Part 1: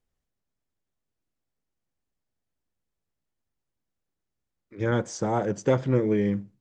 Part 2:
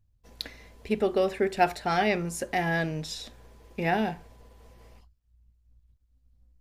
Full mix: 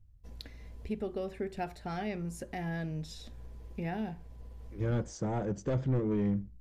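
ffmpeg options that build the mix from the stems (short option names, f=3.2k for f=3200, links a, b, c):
-filter_complex "[0:a]asoftclip=type=tanh:threshold=-21dB,volume=-9.5dB[a];[1:a]lowshelf=f=160:g=4,acompressor=threshold=-48dB:ratio=1.5,volume=-6dB[b];[a][b]amix=inputs=2:normalize=0,lowshelf=f=290:g=11"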